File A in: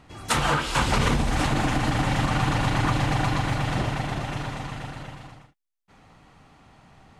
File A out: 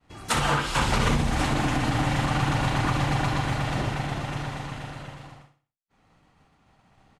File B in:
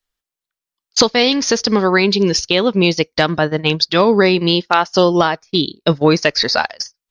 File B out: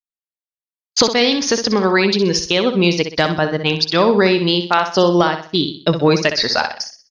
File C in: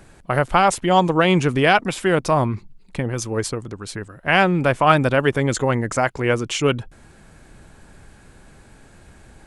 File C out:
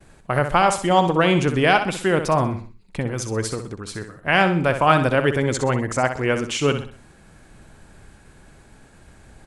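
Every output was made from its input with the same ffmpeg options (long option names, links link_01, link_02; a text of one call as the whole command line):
ffmpeg -i in.wav -filter_complex "[0:a]agate=range=-33dB:threshold=-46dB:ratio=3:detection=peak,asplit=2[link_01][link_02];[link_02]aecho=0:1:63|126|189|252:0.355|0.131|0.0486|0.018[link_03];[link_01][link_03]amix=inputs=2:normalize=0,volume=-1.5dB" out.wav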